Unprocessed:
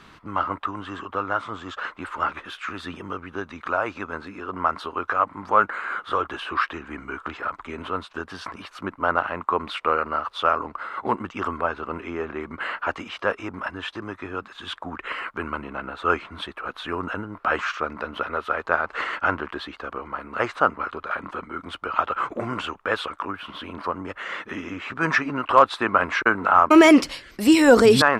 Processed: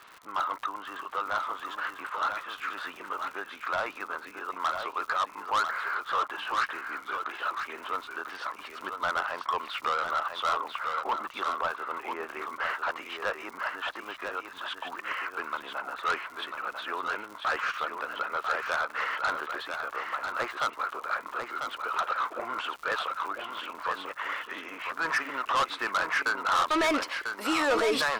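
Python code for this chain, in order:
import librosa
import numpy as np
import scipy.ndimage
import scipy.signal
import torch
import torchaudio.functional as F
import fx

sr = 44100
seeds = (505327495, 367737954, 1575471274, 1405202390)

p1 = scipy.signal.sosfilt(scipy.signal.butter(2, 670.0, 'highpass', fs=sr, output='sos'), x)
p2 = fx.high_shelf(p1, sr, hz=3900.0, db=-10.0)
p3 = fx.dmg_crackle(p2, sr, seeds[0], per_s=120.0, level_db=-38.0)
p4 = 10.0 ** (-22.0 / 20.0) * np.tanh(p3 / 10.0 ** (-22.0 / 20.0))
y = p4 + fx.echo_single(p4, sr, ms=995, db=-6.0, dry=0)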